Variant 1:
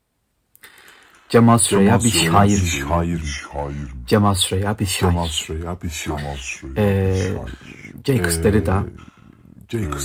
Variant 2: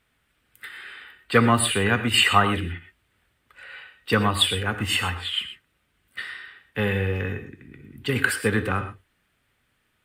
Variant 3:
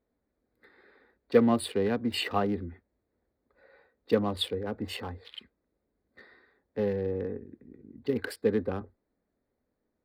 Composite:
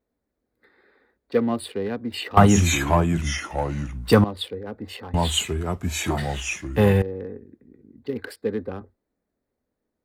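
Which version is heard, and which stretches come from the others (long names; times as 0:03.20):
3
0:02.37–0:04.24: punch in from 1
0:05.14–0:07.02: punch in from 1
not used: 2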